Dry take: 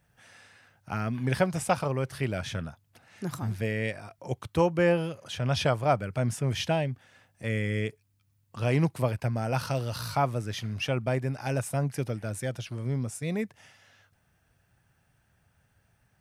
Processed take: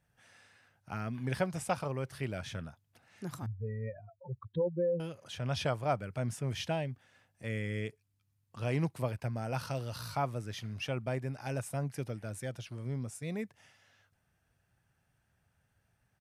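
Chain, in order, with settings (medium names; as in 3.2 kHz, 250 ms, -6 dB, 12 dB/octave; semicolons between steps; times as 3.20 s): 3.46–5.00 s: spectral contrast enhancement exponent 3.2; resampled via 32 kHz; trim -7 dB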